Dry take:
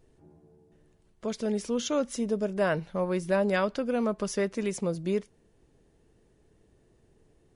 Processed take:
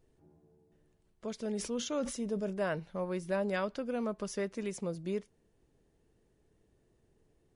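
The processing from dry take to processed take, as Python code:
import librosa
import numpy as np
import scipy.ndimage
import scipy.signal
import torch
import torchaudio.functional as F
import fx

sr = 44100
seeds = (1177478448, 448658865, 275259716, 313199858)

y = fx.sustainer(x, sr, db_per_s=83.0, at=(1.44, 2.6))
y = y * 10.0 ** (-7.0 / 20.0)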